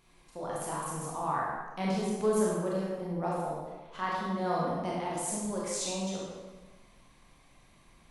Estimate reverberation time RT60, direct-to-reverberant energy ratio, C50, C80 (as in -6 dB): 1.3 s, -5.5 dB, -1.5 dB, 1.5 dB